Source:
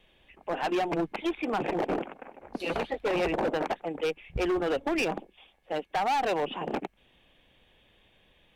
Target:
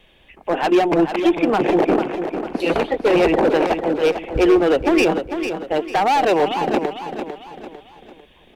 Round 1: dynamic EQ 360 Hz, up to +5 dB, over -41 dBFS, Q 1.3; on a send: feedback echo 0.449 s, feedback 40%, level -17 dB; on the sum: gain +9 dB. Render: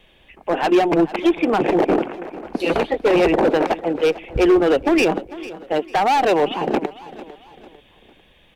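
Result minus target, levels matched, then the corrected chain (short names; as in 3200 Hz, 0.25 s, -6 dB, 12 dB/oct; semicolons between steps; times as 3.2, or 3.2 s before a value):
echo-to-direct -8.5 dB
dynamic EQ 360 Hz, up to +5 dB, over -41 dBFS, Q 1.3; on a send: feedback echo 0.449 s, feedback 40%, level -8.5 dB; on the sum: gain +9 dB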